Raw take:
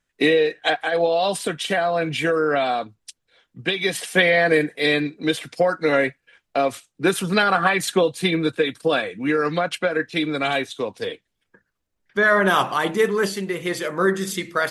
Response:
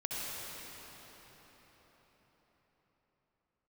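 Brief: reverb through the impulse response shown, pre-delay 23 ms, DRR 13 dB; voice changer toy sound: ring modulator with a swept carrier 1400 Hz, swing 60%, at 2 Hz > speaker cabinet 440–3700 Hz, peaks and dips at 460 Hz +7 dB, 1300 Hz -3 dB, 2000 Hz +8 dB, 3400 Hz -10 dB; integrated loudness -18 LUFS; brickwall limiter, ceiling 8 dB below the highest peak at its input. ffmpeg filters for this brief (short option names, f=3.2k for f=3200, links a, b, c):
-filter_complex "[0:a]alimiter=limit=-12.5dB:level=0:latency=1,asplit=2[a][b];[1:a]atrim=start_sample=2205,adelay=23[c];[b][c]afir=irnorm=-1:irlink=0,volume=-17.5dB[d];[a][d]amix=inputs=2:normalize=0,aeval=exprs='val(0)*sin(2*PI*1400*n/s+1400*0.6/2*sin(2*PI*2*n/s))':c=same,highpass=440,equalizer=f=460:t=q:w=4:g=7,equalizer=f=1.3k:t=q:w=4:g=-3,equalizer=f=2k:t=q:w=4:g=8,equalizer=f=3.4k:t=q:w=4:g=-10,lowpass=f=3.7k:w=0.5412,lowpass=f=3.7k:w=1.3066,volume=6dB"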